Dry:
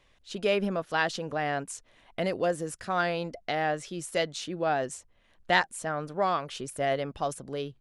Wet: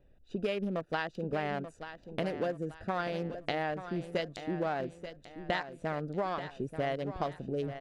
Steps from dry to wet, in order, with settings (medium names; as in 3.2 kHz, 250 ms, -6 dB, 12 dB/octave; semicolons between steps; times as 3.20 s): local Wiener filter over 41 samples; compression 10:1, threshold -34 dBFS, peak gain reduction 16.5 dB; on a send: feedback delay 884 ms, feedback 38%, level -11 dB; on the sum: trim +4.5 dB